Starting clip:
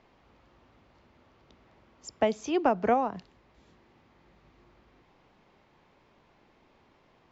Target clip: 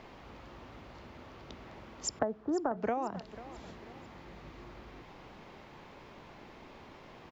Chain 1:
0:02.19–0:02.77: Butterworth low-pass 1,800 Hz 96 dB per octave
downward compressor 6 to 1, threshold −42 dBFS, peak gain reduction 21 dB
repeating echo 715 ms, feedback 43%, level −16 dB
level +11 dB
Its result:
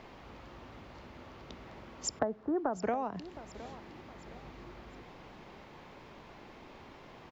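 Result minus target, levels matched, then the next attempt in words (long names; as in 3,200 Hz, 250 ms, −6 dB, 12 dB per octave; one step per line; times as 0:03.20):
echo 222 ms late
0:02.19–0:02.77: Butterworth low-pass 1,800 Hz 96 dB per octave
downward compressor 6 to 1, threshold −42 dBFS, peak gain reduction 21 dB
repeating echo 493 ms, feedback 43%, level −16 dB
level +11 dB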